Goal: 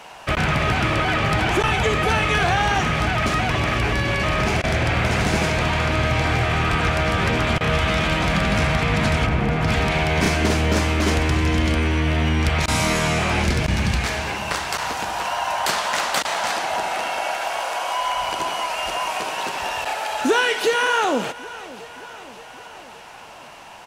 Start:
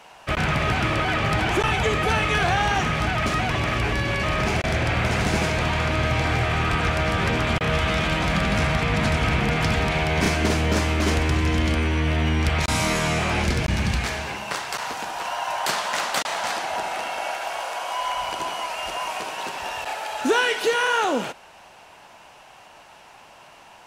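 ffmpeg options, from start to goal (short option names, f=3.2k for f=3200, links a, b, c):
-filter_complex "[0:a]asplit=3[a][b][c];[a]afade=t=out:st=9.25:d=0.02[d];[b]highshelf=f=2k:g=-10.5,afade=t=in:st=9.25:d=0.02,afade=t=out:st=9.67:d=0.02[e];[c]afade=t=in:st=9.67:d=0.02[f];[d][e][f]amix=inputs=3:normalize=0,aecho=1:1:571|1142|1713|2284:0.0794|0.0469|0.0277|0.0163,asplit=2[g][h];[h]acompressor=threshold=-31dB:ratio=6,volume=0.5dB[i];[g][i]amix=inputs=2:normalize=0"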